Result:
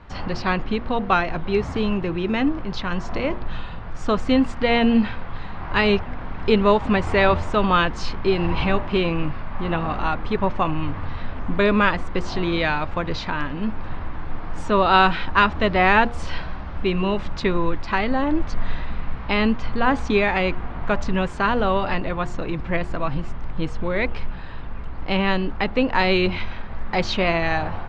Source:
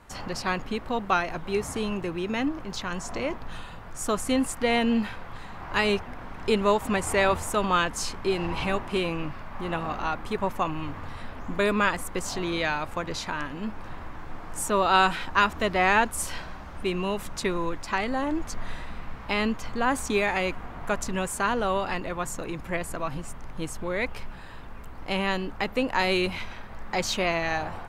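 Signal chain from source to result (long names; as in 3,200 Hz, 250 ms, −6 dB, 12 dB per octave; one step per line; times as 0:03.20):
low-pass filter 4,500 Hz 24 dB per octave
low-shelf EQ 190 Hz +7 dB
hum removal 118.8 Hz, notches 7
level +4.5 dB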